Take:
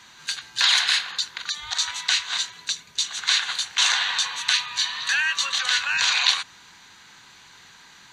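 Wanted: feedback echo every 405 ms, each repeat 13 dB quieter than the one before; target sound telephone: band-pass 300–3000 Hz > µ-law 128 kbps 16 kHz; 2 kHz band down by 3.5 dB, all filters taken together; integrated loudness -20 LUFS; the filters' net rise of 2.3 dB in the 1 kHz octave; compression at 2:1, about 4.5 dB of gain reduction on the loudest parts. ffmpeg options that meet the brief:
-af "equalizer=f=1000:t=o:g=4.5,equalizer=f=2000:t=o:g=-5.5,acompressor=threshold=0.0562:ratio=2,highpass=300,lowpass=3000,aecho=1:1:405|810|1215:0.224|0.0493|0.0108,volume=3.35" -ar 16000 -c:a pcm_mulaw

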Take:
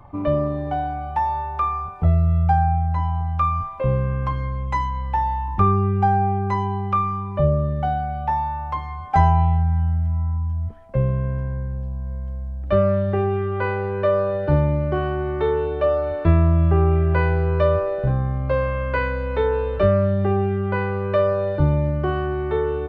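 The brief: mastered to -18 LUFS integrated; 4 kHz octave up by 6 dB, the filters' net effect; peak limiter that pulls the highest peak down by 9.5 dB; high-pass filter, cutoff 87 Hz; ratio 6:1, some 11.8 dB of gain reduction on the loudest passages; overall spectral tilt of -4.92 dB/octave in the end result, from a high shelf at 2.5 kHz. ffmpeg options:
-af "highpass=87,highshelf=f=2500:g=5,equalizer=f=4000:t=o:g=4,acompressor=threshold=0.0501:ratio=6,volume=5.01,alimiter=limit=0.316:level=0:latency=1"

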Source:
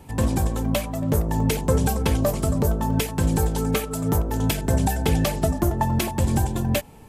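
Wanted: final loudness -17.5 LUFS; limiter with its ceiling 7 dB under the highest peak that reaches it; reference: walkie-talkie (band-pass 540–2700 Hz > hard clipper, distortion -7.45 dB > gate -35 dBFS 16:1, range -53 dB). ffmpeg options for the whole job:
-af "alimiter=limit=0.188:level=0:latency=1,highpass=540,lowpass=2700,asoftclip=type=hard:threshold=0.02,agate=range=0.00224:threshold=0.0178:ratio=16,volume=31.6"

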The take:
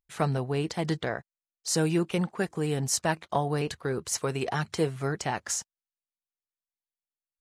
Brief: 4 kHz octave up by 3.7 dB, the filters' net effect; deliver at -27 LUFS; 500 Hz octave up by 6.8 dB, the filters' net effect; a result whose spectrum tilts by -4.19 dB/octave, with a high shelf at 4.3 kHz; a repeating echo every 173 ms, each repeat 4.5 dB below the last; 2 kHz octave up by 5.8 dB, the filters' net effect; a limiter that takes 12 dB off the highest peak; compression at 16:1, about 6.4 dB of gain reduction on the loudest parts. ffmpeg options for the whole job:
-af "equalizer=f=500:t=o:g=8,equalizer=f=2000:t=o:g=6.5,equalizer=f=4000:t=o:g=7,highshelf=f=4300:g=-6,acompressor=threshold=0.0794:ratio=16,alimiter=limit=0.0708:level=0:latency=1,aecho=1:1:173|346|519|692|865|1038|1211|1384|1557:0.596|0.357|0.214|0.129|0.0772|0.0463|0.0278|0.0167|0.01,volume=1.78"

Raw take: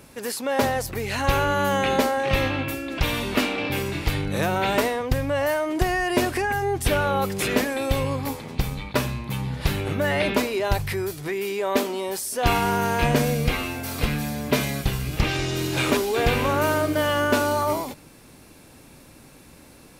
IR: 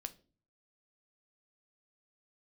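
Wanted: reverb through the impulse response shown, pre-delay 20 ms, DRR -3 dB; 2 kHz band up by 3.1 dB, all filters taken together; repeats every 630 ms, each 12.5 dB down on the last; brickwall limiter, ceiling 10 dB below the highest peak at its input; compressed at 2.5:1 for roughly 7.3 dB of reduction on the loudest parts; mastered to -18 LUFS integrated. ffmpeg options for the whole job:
-filter_complex "[0:a]equalizer=f=2000:t=o:g=4,acompressor=threshold=0.0447:ratio=2.5,alimiter=limit=0.1:level=0:latency=1,aecho=1:1:630|1260|1890:0.237|0.0569|0.0137,asplit=2[s0][s1];[1:a]atrim=start_sample=2205,adelay=20[s2];[s1][s2]afir=irnorm=-1:irlink=0,volume=2[s3];[s0][s3]amix=inputs=2:normalize=0,volume=2.24"

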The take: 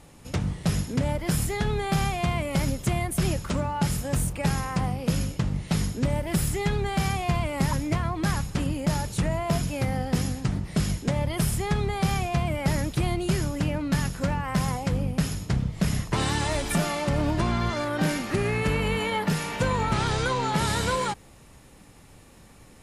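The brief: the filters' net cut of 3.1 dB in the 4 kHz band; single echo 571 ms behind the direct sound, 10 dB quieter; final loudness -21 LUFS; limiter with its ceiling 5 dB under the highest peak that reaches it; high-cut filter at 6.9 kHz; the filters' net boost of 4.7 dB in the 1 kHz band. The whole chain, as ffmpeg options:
-af "lowpass=6900,equalizer=f=1000:t=o:g=6,equalizer=f=4000:t=o:g=-4,alimiter=limit=0.141:level=0:latency=1,aecho=1:1:571:0.316,volume=2"

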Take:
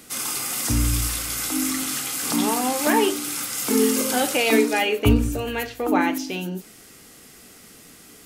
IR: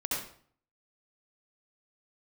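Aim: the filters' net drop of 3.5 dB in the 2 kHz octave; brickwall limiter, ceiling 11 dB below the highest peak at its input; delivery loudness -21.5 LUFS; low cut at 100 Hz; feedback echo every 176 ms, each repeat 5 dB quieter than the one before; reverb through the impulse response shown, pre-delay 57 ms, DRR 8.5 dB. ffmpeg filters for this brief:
-filter_complex "[0:a]highpass=100,equalizer=f=2000:t=o:g=-4.5,alimiter=limit=0.126:level=0:latency=1,aecho=1:1:176|352|528|704|880|1056|1232:0.562|0.315|0.176|0.0988|0.0553|0.031|0.0173,asplit=2[s0][s1];[1:a]atrim=start_sample=2205,adelay=57[s2];[s1][s2]afir=irnorm=-1:irlink=0,volume=0.2[s3];[s0][s3]amix=inputs=2:normalize=0,volume=1.41"

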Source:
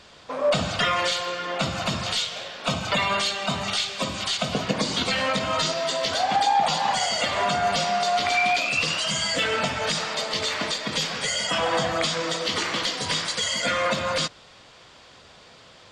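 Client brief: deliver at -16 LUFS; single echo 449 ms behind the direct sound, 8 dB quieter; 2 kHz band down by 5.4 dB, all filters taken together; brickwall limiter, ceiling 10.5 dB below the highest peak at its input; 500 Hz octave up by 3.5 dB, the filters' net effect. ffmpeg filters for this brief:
-af "equalizer=f=500:t=o:g=5,equalizer=f=2000:t=o:g=-7.5,alimiter=limit=0.112:level=0:latency=1,aecho=1:1:449:0.398,volume=3.55"

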